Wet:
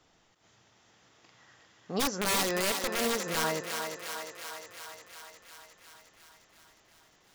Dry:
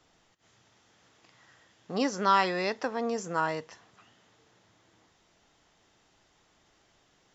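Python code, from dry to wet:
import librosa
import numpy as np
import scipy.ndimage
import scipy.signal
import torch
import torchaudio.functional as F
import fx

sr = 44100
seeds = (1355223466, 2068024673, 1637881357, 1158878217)

y = fx.overflow_wrap(x, sr, gain_db=22.5, at=(1.99, 3.43), fade=0.02)
y = fx.echo_thinned(y, sr, ms=357, feedback_pct=71, hz=340.0, wet_db=-5.5)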